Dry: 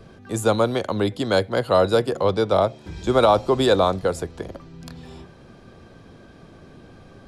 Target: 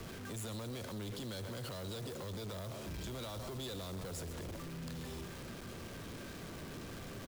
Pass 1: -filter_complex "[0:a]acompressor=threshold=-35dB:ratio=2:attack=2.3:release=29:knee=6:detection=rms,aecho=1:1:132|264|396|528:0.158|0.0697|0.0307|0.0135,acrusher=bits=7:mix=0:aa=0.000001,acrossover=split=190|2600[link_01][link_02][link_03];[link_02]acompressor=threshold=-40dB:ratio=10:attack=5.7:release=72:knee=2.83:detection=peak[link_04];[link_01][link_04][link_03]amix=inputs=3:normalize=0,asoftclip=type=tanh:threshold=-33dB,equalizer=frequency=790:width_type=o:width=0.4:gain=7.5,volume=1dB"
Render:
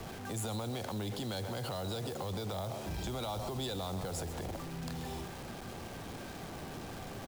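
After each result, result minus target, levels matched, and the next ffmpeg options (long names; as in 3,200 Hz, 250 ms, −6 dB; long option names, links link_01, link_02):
soft clipping: distortion −8 dB; 1,000 Hz band +4.0 dB
-filter_complex "[0:a]acompressor=threshold=-35dB:ratio=2:attack=2.3:release=29:knee=6:detection=rms,aecho=1:1:132|264|396|528:0.158|0.0697|0.0307|0.0135,acrusher=bits=7:mix=0:aa=0.000001,acrossover=split=190|2600[link_01][link_02][link_03];[link_02]acompressor=threshold=-40dB:ratio=10:attack=5.7:release=72:knee=2.83:detection=peak[link_04];[link_01][link_04][link_03]amix=inputs=3:normalize=0,asoftclip=type=tanh:threshold=-41dB,equalizer=frequency=790:width_type=o:width=0.4:gain=7.5,volume=1dB"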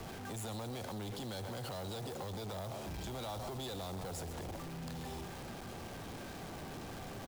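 1,000 Hz band +5.0 dB
-filter_complex "[0:a]acompressor=threshold=-35dB:ratio=2:attack=2.3:release=29:knee=6:detection=rms,aecho=1:1:132|264|396|528:0.158|0.0697|0.0307|0.0135,acrusher=bits=7:mix=0:aa=0.000001,acrossover=split=190|2600[link_01][link_02][link_03];[link_02]acompressor=threshold=-40dB:ratio=10:attack=5.7:release=72:knee=2.83:detection=peak[link_04];[link_01][link_04][link_03]amix=inputs=3:normalize=0,asoftclip=type=tanh:threshold=-41dB,equalizer=frequency=790:width_type=o:width=0.4:gain=-4,volume=1dB"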